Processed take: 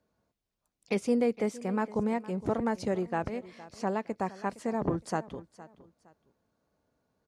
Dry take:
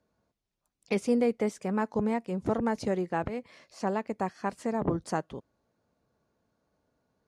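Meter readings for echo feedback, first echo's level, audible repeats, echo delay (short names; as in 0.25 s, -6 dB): 28%, -18.0 dB, 2, 0.463 s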